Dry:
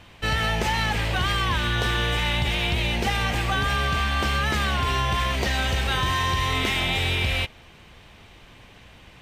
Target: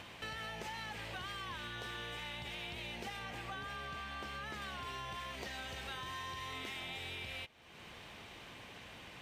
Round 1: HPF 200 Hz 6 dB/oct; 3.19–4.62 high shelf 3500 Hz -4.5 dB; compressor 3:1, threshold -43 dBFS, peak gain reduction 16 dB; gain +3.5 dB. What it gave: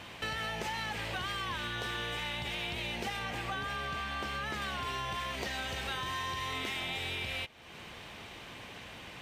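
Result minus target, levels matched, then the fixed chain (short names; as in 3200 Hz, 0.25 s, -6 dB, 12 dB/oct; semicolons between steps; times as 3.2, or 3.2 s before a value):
compressor: peak gain reduction -7.5 dB
HPF 200 Hz 6 dB/oct; 3.19–4.62 high shelf 3500 Hz -4.5 dB; compressor 3:1, threshold -54 dBFS, peak gain reduction 23 dB; gain +3.5 dB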